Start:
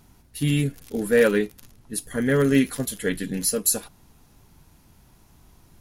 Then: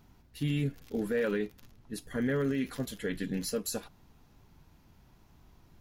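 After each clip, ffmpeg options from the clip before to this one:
-af "equalizer=f=10k:w=0.94:g=-13,alimiter=limit=-17.5dB:level=0:latency=1:release=48,volume=-5dB"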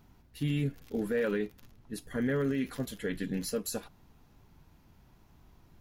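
-af "equalizer=f=5.4k:t=o:w=1.7:g=-2"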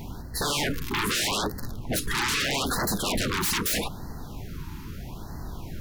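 -af "aeval=exprs='0.075*sin(PI/2*8.91*val(0)/0.075)':c=same,afftfilt=real='re*(1-between(b*sr/1024,560*pow(2900/560,0.5+0.5*sin(2*PI*0.79*pts/sr))/1.41,560*pow(2900/560,0.5+0.5*sin(2*PI*0.79*pts/sr))*1.41))':imag='im*(1-between(b*sr/1024,560*pow(2900/560,0.5+0.5*sin(2*PI*0.79*pts/sr))/1.41,560*pow(2900/560,0.5+0.5*sin(2*PI*0.79*pts/sr))*1.41))':win_size=1024:overlap=0.75"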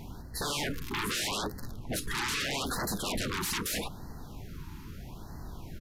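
-af "aresample=32000,aresample=44100,volume=-6dB"

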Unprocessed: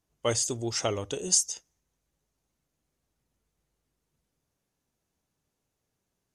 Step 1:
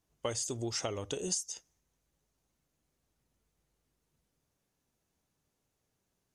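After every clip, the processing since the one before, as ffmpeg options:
-af "acompressor=threshold=-32dB:ratio=6"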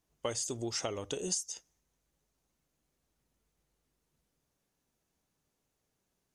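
-af "equalizer=f=100:t=o:w=0.76:g=-4"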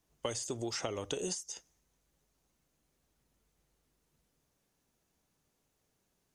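-filter_complex "[0:a]acrossover=split=400|2800[a][b][c];[a]acompressor=threshold=-43dB:ratio=4[d];[b]acompressor=threshold=-39dB:ratio=4[e];[c]acompressor=threshold=-42dB:ratio=4[f];[d][e][f]amix=inputs=3:normalize=0,volume=3dB"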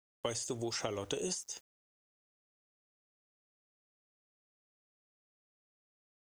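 -af "aeval=exprs='val(0)*gte(abs(val(0)),0.00141)':c=same"

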